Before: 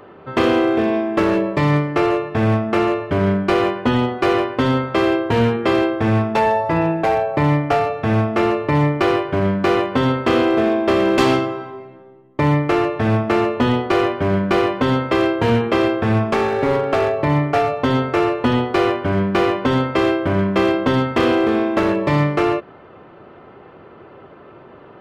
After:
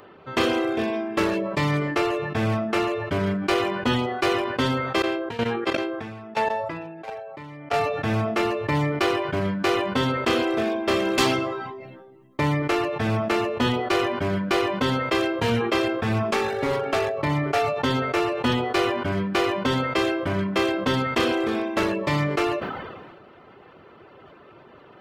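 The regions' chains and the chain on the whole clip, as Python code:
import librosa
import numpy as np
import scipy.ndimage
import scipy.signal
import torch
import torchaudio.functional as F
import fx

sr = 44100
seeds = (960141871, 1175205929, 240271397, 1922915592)

y = fx.chain(x, sr, fx.highpass(hz=160.0, slope=6),
    fx.high_shelf(hz=6800.0, db=-10.0),
    fx.level_steps(step_db=16), at=(5.02, 7.74))
y = fx.high_shelf(y, sr, hz=2600.0, db=11.5)
y = fx.dereverb_blind(y, sr, rt60_s=0.56)
y = fx.sustainer(y, sr, db_per_s=35.0)
y = y * 10.0 ** (-6.5 / 20.0)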